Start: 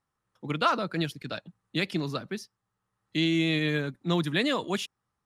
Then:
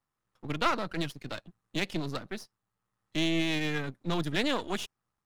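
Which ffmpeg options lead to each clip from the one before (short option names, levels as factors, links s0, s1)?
-af "aeval=exprs='if(lt(val(0),0),0.251*val(0),val(0))':c=same"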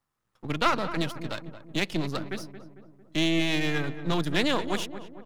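-filter_complex "[0:a]asplit=2[s0][s1];[s1]adelay=225,lowpass=f=1400:p=1,volume=0.282,asplit=2[s2][s3];[s3]adelay=225,lowpass=f=1400:p=1,volume=0.54,asplit=2[s4][s5];[s5]adelay=225,lowpass=f=1400:p=1,volume=0.54,asplit=2[s6][s7];[s7]adelay=225,lowpass=f=1400:p=1,volume=0.54,asplit=2[s8][s9];[s9]adelay=225,lowpass=f=1400:p=1,volume=0.54,asplit=2[s10][s11];[s11]adelay=225,lowpass=f=1400:p=1,volume=0.54[s12];[s0][s2][s4][s6][s8][s10][s12]amix=inputs=7:normalize=0,volume=1.5"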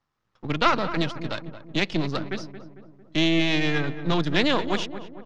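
-af "lowpass=f=5900:w=0.5412,lowpass=f=5900:w=1.3066,volume=1.5"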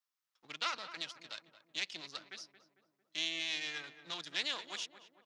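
-af "aderivative,volume=0.75"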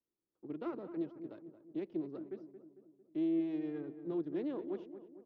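-af "lowpass=f=350:t=q:w=3.7,volume=2.99"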